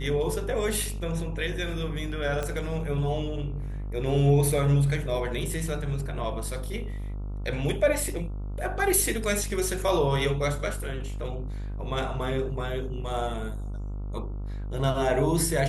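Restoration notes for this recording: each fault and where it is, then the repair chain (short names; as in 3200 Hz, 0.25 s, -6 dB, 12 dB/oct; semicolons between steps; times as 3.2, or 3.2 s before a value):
buzz 50 Hz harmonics 28 -33 dBFS
2.43 pop -17 dBFS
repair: de-click; de-hum 50 Hz, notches 28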